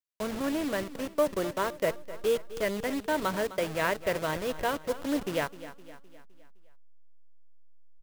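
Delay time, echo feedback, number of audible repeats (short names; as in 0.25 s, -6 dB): 0.257 s, 50%, 4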